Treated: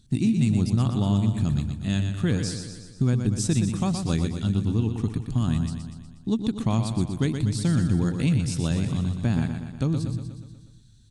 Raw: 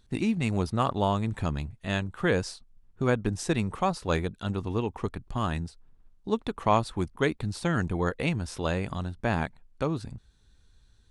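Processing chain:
octave-band graphic EQ 125/250/500/1,000/2,000/4,000/8,000 Hz +12/+8/−6/−6/−4/+4/+9 dB
downward compressor 2 to 1, threshold −22 dBFS, peak gain reduction 6.5 dB
on a send: repeating echo 121 ms, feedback 57%, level −7 dB

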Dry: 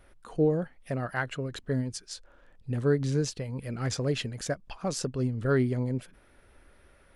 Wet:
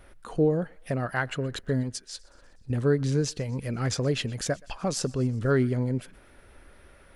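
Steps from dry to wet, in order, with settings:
in parallel at −1.5 dB: downward compressor, threshold −34 dBFS, peak gain reduction 14 dB
0:01.83–0:02.70: on the sum: transient designer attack −10 dB, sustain −6 dB
feedback echo with a high-pass in the loop 123 ms, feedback 64%, high-pass 760 Hz, level −23 dB

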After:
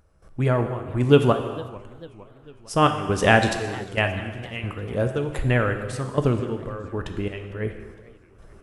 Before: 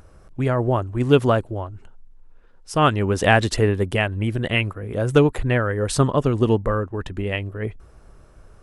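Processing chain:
gate pattern ".xx.xx..x." 68 BPM −12 dB
reverb whose tail is shaped and stops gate 460 ms falling, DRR 6 dB
feedback echo with a swinging delay time 452 ms, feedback 55%, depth 204 cents, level −21 dB
level −1 dB

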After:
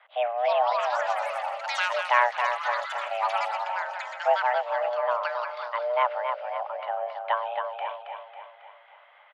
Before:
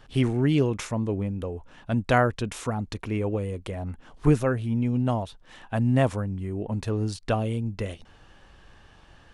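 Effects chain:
single-sideband voice off tune +360 Hz 240–2,700 Hz
repeating echo 273 ms, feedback 52%, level −6 dB
delay with pitch and tempo change per echo 374 ms, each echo +7 semitones, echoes 3, each echo −6 dB

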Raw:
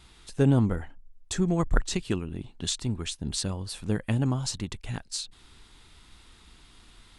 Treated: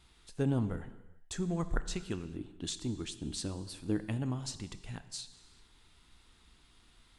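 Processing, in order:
0:02.35–0:04.00: parametric band 310 Hz +13 dB 0.43 octaves
reverb whose tail is shaped and stops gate 460 ms falling, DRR 11.5 dB
level −9 dB

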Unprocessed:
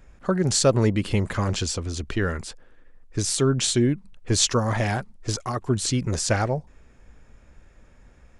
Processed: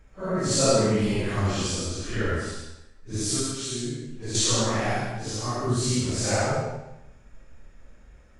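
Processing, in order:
random phases in long frames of 200 ms
0:03.39–0:04.35: downward compressor 4 to 1, threshold −29 dBFS, peak gain reduction 12.5 dB
convolution reverb RT60 0.85 s, pre-delay 35 ms, DRR 0.5 dB
level −3 dB

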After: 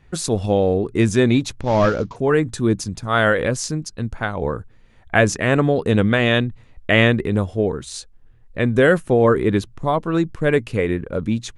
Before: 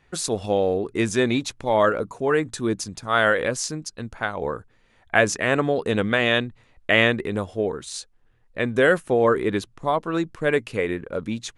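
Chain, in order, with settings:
0:01.61–0:02.16: variable-slope delta modulation 32 kbit/s
low-shelf EQ 230 Hz +12 dB
level +1 dB

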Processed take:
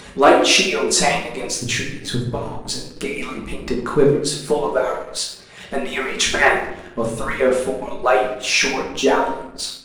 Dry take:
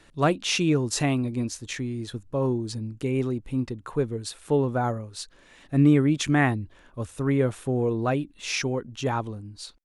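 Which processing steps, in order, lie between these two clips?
harmonic-percussive split with one part muted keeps percussive
convolution reverb RT60 0.75 s, pre-delay 5 ms, DRR −3 dB
leveller curve on the samples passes 1
in parallel at −1 dB: upward compression, threshold −23 dBFS

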